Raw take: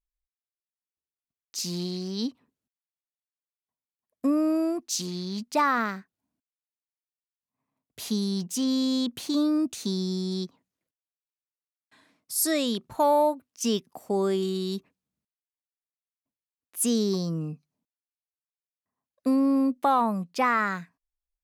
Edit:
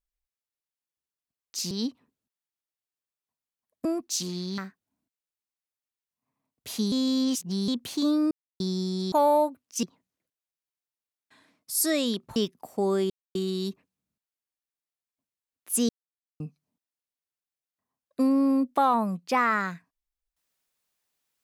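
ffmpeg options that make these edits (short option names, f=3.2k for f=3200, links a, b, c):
-filter_complex "[0:a]asplit=14[a][b][c][d][e][f][g][h][i][j][k][l][m][n];[a]atrim=end=1.712[o];[b]atrim=start=2.108:end=4.252[p];[c]atrim=start=4.638:end=5.372[q];[d]atrim=start=5.898:end=8.242[r];[e]atrim=start=8.238:end=9.002,asetpts=PTS-STARTPTS,areverse[s];[f]atrim=start=8.998:end=9.63,asetpts=PTS-STARTPTS,afade=t=out:st=0.628:d=0.004:c=hsin[t];[g]atrim=start=9.63:end=9.92,asetpts=PTS-STARTPTS,volume=0[u];[h]atrim=start=9.92:end=10.442,asetpts=PTS-STARTPTS,afade=t=in:d=0.004:c=hsin[v];[i]atrim=start=12.968:end=13.682[w];[j]atrim=start=10.438:end=12.972[x];[k]atrim=start=13.678:end=14.42,asetpts=PTS-STARTPTS,afade=t=out:st=0.738:d=0.004:c=hsin,apad=pad_dur=0.25[y];[l]atrim=start=14.42:end=16.96,asetpts=PTS-STARTPTS,afade=t=in:d=0.004:c=hsin,afade=t=out:st=2.536:d=0.004:c=hsin[z];[m]atrim=start=16.96:end=17.47,asetpts=PTS-STARTPTS,volume=0[aa];[n]atrim=start=17.47,asetpts=PTS-STARTPTS,afade=t=in:d=0.004:c=hsin[ab];[o][p]acrossfade=d=0.004:c1=hsin:c2=hsin[ac];[ac][q]acrossfade=d=0.004:c1=hsin:c2=hsin[ad];[ad][r]acrossfade=d=0.004:c1=hsin:c2=hsin[ae];[ae][s]acrossfade=d=0.004:c1=hsin:c2=hsin[af];[t][u][v]concat=n=3:v=0:a=1[ag];[af][ag]acrossfade=d=0.004:c1=hsin:c2=hsin[ah];[ah][w]acrossfade=d=0.004:c1=hsin:c2=hsin[ai];[ai][x]acrossfade=d=0.004:c1=hsin:c2=hsin[aj];[y][z][aa][ab]concat=n=4:v=0:a=1[ak];[aj][ak]acrossfade=d=0.004:c1=hsin:c2=hsin"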